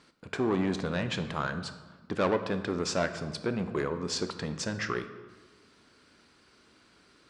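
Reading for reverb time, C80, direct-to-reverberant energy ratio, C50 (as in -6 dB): 1.3 s, 12.5 dB, 8.5 dB, 11.0 dB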